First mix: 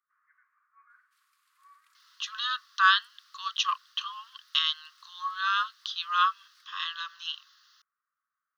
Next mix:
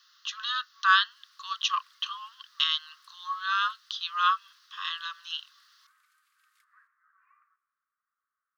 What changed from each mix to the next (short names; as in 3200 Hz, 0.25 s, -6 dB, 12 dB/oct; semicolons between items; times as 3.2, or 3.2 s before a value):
speech: entry -1.95 s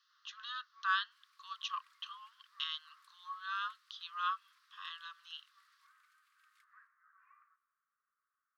speech -11.0 dB; master: add high shelf 4900 Hz -8 dB